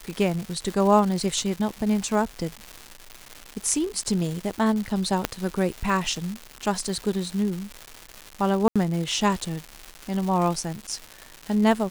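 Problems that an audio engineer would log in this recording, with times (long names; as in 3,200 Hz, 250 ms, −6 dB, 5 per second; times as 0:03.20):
surface crackle 370 per second −29 dBFS
0:05.25: click −6 dBFS
0:08.68–0:08.76: drop-out 76 ms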